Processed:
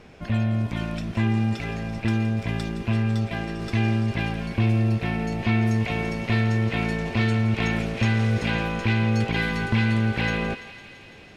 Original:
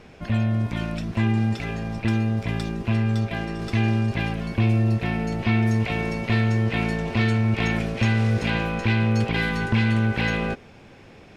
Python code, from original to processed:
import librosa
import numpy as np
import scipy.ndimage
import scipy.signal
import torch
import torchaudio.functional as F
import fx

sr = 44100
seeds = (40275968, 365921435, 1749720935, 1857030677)

y = fx.echo_thinned(x, sr, ms=168, feedback_pct=81, hz=1100.0, wet_db=-12.0)
y = y * 10.0 ** (-1.0 / 20.0)